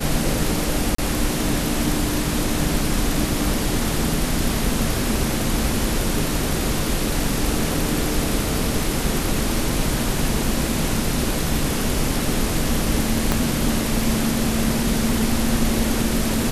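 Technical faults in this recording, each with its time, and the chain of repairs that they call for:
0.95–0.98 s: dropout 34 ms
13.32 s: pop -4 dBFS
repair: de-click; interpolate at 0.95 s, 34 ms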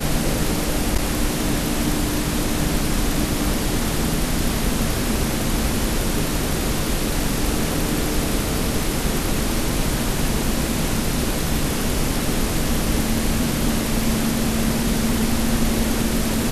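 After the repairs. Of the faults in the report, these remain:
13.32 s: pop

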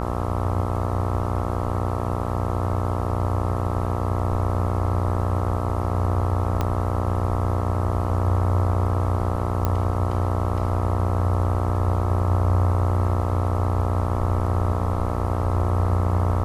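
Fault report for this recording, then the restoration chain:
buzz 60 Hz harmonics 22 -27 dBFS
6.61 s: pop -11 dBFS
9.65 s: pop -10 dBFS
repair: de-click; de-hum 60 Hz, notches 22

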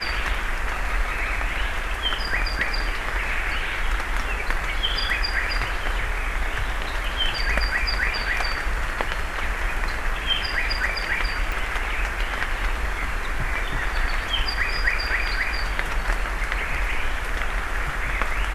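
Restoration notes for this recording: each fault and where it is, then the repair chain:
11.52 s: pop -14 dBFS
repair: de-click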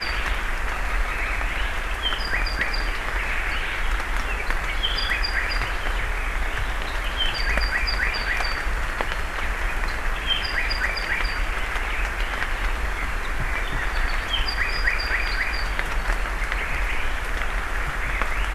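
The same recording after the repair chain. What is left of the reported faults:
11.52 s: pop

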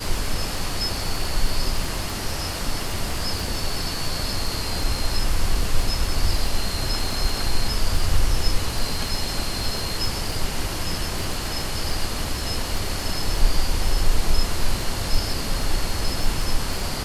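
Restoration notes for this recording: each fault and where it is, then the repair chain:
crackle 23 per s -26 dBFS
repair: de-click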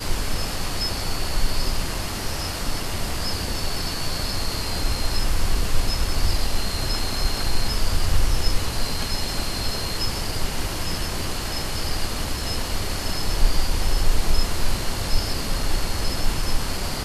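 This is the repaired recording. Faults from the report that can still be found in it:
nothing left

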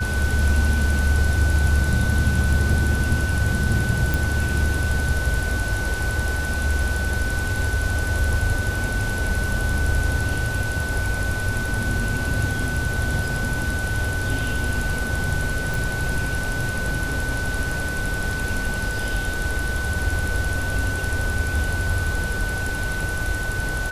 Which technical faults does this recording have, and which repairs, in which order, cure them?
whine 1.5 kHz -27 dBFS
4.14 s: pop
15.74 s: pop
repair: de-click; band-stop 1.5 kHz, Q 30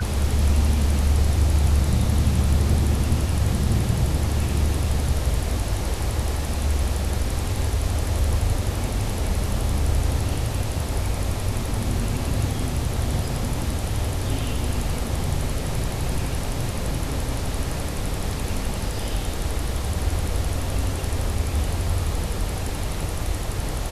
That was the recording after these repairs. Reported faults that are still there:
nothing left

